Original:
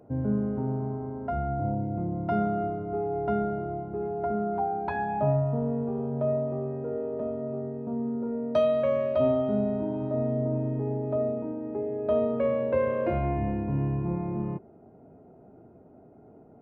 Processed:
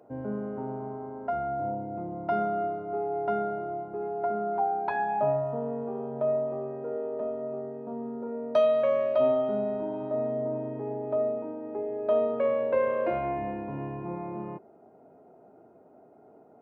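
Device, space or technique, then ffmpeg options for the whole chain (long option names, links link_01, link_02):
filter by subtraction: -filter_complex "[0:a]asplit=2[link_01][link_02];[link_02]lowpass=730,volume=-1[link_03];[link_01][link_03]amix=inputs=2:normalize=0"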